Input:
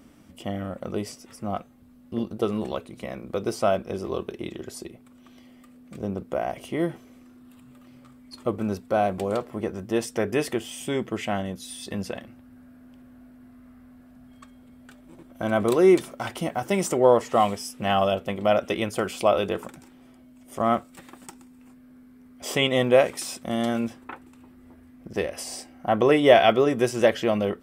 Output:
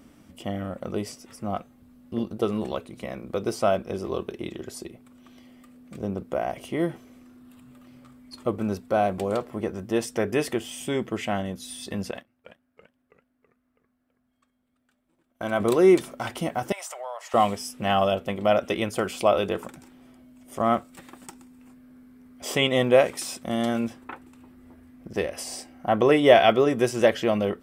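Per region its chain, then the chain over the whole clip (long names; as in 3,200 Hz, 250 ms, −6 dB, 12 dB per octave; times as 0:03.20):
0:12.11–0:15.60: noise gate −40 dBFS, range −19 dB + low-shelf EQ 430 Hz −6.5 dB + feedback echo with a swinging delay time 332 ms, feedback 51%, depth 176 cents, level −11 dB
0:16.72–0:17.34: elliptic high-pass filter 640 Hz, stop band 70 dB + downward compressor 3 to 1, threshold −35 dBFS
whole clip: no processing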